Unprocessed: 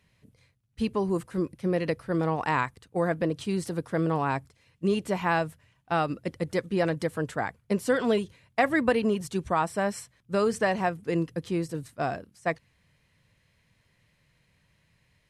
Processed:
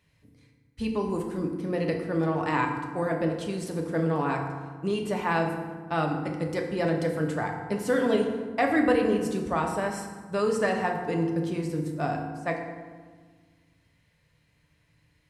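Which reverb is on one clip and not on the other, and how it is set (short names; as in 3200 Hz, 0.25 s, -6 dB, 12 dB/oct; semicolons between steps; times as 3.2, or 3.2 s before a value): FDN reverb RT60 1.5 s, low-frequency decay 1.5×, high-frequency decay 0.55×, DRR 1.5 dB; gain -2.5 dB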